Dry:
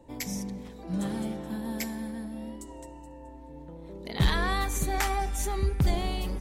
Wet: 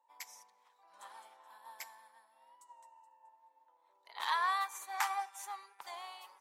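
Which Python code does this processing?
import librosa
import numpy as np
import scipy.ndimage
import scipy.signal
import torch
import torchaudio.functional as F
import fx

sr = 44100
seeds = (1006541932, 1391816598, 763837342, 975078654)

y = fx.ladder_highpass(x, sr, hz=880.0, resonance_pct=65)
y = fx.upward_expand(y, sr, threshold_db=-59.0, expansion=1.5)
y = F.gain(torch.from_numpy(y), 4.0).numpy()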